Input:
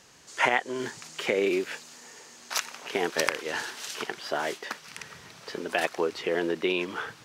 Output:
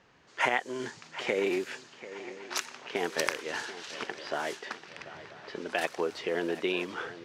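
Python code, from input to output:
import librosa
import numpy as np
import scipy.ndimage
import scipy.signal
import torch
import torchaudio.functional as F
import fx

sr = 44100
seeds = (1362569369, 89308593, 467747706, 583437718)

y = fx.echo_swing(x, sr, ms=985, ratio=3, feedback_pct=45, wet_db=-15)
y = fx.env_lowpass(y, sr, base_hz=2400.0, full_db=-24.5)
y = F.gain(torch.from_numpy(y), -3.5).numpy()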